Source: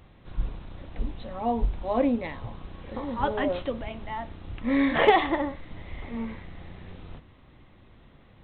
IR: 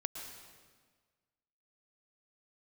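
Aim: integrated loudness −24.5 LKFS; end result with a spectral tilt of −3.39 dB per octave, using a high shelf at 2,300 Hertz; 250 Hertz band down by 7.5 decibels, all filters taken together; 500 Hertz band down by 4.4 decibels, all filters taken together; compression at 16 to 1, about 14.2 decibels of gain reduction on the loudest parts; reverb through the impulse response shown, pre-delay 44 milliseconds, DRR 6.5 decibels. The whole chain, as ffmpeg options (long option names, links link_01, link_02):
-filter_complex "[0:a]equalizer=frequency=250:width_type=o:gain=-7.5,equalizer=frequency=500:width_type=o:gain=-4,highshelf=frequency=2300:gain=8.5,acompressor=threshold=-29dB:ratio=16,asplit=2[link_01][link_02];[1:a]atrim=start_sample=2205,adelay=44[link_03];[link_02][link_03]afir=irnorm=-1:irlink=0,volume=-6.5dB[link_04];[link_01][link_04]amix=inputs=2:normalize=0,volume=12dB"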